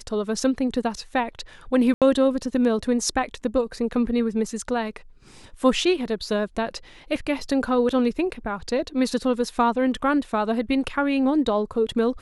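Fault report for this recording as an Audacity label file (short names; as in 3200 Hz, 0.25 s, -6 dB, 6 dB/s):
1.940000	2.020000	gap 77 ms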